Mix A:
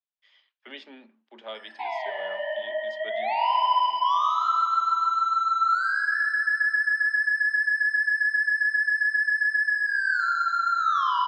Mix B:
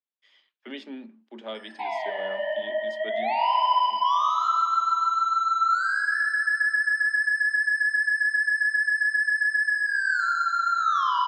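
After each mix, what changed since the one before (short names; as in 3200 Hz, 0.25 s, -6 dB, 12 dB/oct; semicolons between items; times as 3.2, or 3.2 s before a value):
master: remove three-band isolator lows -13 dB, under 480 Hz, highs -16 dB, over 6500 Hz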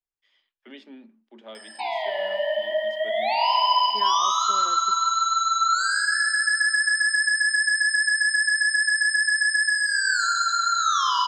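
first voice -6.0 dB; second voice: unmuted; background: remove three-band isolator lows -23 dB, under 520 Hz, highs -21 dB, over 2600 Hz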